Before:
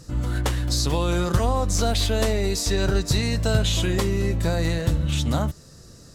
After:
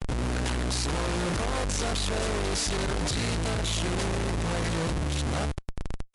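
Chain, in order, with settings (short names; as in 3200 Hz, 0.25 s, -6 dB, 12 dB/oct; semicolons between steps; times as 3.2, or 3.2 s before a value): Schmitt trigger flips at -38 dBFS; gain -5 dB; MP3 56 kbps 24000 Hz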